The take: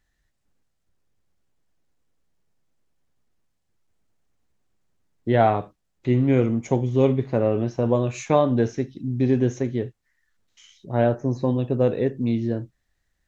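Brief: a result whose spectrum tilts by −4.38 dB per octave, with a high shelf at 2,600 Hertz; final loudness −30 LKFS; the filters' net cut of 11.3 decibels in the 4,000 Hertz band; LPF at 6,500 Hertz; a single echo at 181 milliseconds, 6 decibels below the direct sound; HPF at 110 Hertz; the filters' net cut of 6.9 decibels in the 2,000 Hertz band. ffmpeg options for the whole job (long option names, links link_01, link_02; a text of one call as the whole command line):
ffmpeg -i in.wav -af "highpass=110,lowpass=6500,equalizer=frequency=2000:width_type=o:gain=-4.5,highshelf=frequency=2600:gain=-7.5,equalizer=frequency=4000:width_type=o:gain=-6.5,aecho=1:1:181:0.501,volume=-7.5dB" out.wav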